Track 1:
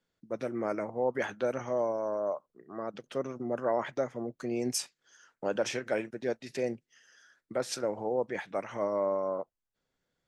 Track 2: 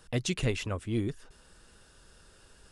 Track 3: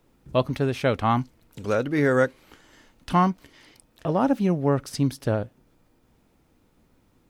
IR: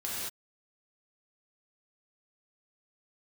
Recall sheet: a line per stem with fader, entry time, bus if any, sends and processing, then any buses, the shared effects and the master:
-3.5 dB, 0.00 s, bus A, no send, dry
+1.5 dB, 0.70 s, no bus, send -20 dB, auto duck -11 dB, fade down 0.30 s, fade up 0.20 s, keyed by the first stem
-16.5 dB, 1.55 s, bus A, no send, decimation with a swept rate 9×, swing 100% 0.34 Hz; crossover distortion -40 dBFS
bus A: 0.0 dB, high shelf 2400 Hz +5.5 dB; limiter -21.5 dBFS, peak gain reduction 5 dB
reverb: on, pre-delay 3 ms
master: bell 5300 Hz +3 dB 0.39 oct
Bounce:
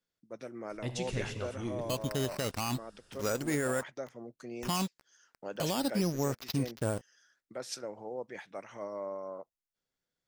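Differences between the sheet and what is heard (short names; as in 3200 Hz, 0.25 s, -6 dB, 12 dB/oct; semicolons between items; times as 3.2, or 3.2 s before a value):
stem 1 -3.5 dB -> -9.5 dB; stem 3 -16.5 dB -> -5.5 dB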